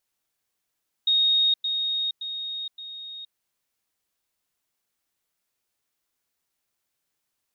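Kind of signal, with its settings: level ladder 3.73 kHz -17.5 dBFS, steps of -6 dB, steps 4, 0.47 s 0.10 s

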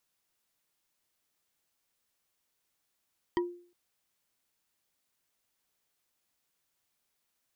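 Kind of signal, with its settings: wood hit bar, length 0.36 s, lowest mode 351 Hz, decay 0.47 s, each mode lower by 4.5 dB, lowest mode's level -23.5 dB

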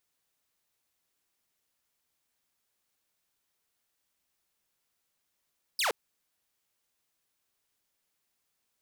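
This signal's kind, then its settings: laser zap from 5.4 kHz, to 380 Hz, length 0.12 s saw, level -23 dB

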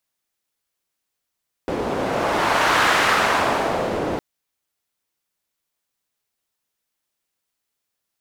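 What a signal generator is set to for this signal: wind-like swept noise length 2.51 s, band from 430 Hz, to 1.4 kHz, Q 1.1, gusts 1, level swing 7.5 dB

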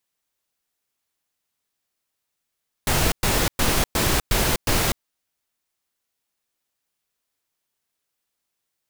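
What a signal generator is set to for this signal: noise bursts pink, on 0.25 s, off 0.11 s, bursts 6, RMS -20 dBFS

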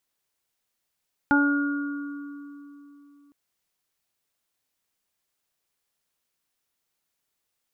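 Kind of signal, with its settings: additive tone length 2.01 s, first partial 286 Hz, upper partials -14/-2.5/-19.5/-1.5 dB, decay 3.33 s, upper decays 1.27/0.39/3.48/1.98 s, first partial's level -18 dB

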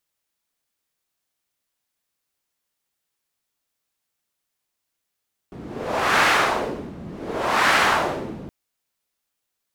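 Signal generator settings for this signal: wind-like swept noise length 2.97 s, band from 210 Hz, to 1.5 kHz, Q 1.3, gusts 2, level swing 19.5 dB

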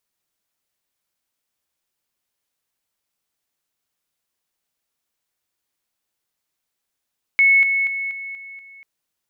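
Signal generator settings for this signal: level ladder 2.2 kHz -10.5 dBFS, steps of -6 dB, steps 6, 0.24 s 0.00 s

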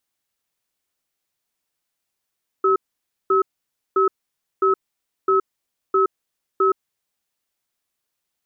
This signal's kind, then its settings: cadence 385 Hz, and 1.29 kHz, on 0.12 s, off 0.54 s, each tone -16.5 dBFS 4.39 s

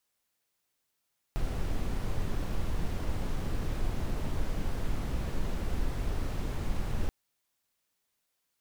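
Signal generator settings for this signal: noise brown, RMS -29.5 dBFS 5.73 s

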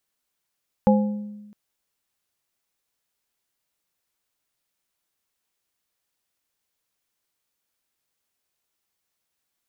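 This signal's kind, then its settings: glass hit plate, length 0.66 s, lowest mode 208 Hz, modes 3, decay 1.21 s, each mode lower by 3 dB, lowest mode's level -13 dB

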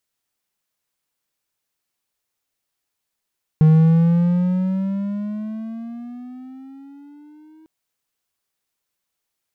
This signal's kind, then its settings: gliding synth tone triangle, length 4.05 s, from 155 Hz, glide +12.5 st, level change -37 dB, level -6 dB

